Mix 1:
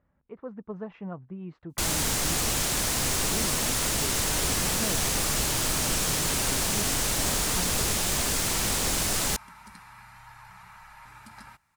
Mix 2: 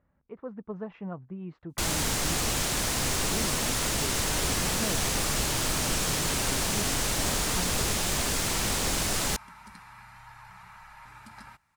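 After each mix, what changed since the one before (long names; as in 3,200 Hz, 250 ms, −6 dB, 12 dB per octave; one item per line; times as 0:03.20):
master: add high-shelf EQ 7,600 Hz −5 dB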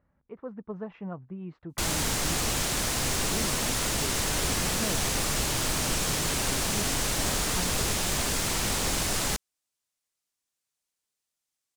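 second sound: muted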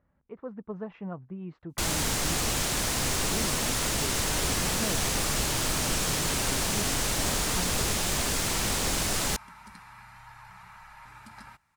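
second sound: unmuted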